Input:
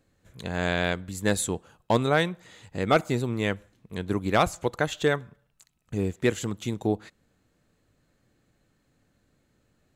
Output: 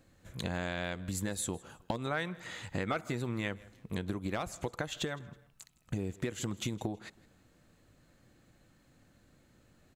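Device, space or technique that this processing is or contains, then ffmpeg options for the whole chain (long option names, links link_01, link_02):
serial compression, peaks first: -filter_complex "[0:a]acompressor=threshold=-30dB:ratio=5,acompressor=threshold=-37dB:ratio=3,bandreject=frequency=430:width=12,asettb=1/sr,asplit=3[link_01][link_02][link_03];[link_01]atrim=end=1.964[link_04];[link_02]atrim=start=1.96:end=3.48,asetpts=PTS-STARTPTS,afade=type=in:duration=0.004:curve=qsin,afade=type=out:start_time=1.516:duration=0.004:curve=qsin,adynamicequalizer=threshold=0.00158:dfrequency=1600:dqfactor=0.93:tfrequency=1600:tqfactor=0.93:attack=5:release=100:ratio=0.375:range=3:mode=boostabove:tftype=bell[link_05];[link_03]atrim=start=3.476[link_06];[link_04][link_05]acrossfade=duration=0.004:curve1=hsin:curve2=qsin[link_07];[link_07][link_06]acrossfade=duration=0.004:curve1=qsin:curve2=hsin,aecho=1:1:161|322:0.0708|0.0248,volume=4dB"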